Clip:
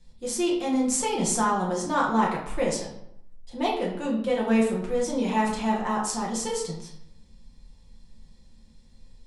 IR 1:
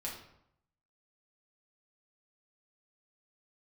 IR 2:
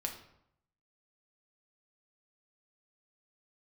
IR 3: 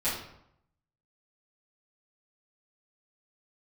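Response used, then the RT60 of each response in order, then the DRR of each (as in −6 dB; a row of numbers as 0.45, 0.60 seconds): 1; 0.75, 0.75, 0.75 seconds; −4.5, 2.0, −14.5 decibels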